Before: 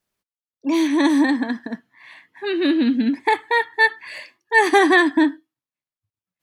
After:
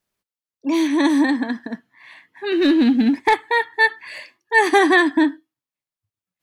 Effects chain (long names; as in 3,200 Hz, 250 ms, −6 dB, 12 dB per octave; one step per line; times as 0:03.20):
0:02.52–0:03.35: leveller curve on the samples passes 1